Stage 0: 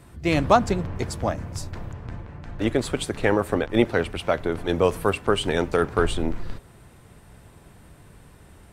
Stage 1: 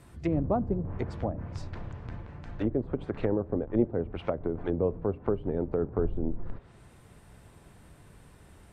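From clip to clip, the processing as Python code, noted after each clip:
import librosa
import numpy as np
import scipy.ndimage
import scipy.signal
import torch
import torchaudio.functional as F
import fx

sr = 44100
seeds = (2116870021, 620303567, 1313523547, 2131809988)

y = fx.env_lowpass_down(x, sr, base_hz=470.0, full_db=-20.0)
y = y * librosa.db_to_amplitude(-4.5)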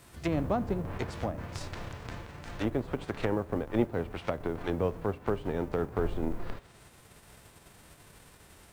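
y = fx.envelope_flatten(x, sr, power=0.6)
y = y * librosa.db_to_amplitude(-2.0)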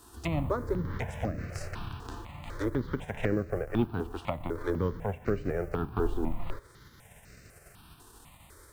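y = fx.phaser_held(x, sr, hz=4.0, low_hz=580.0, high_hz=3300.0)
y = y * librosa.db_to_amplitude(3.5)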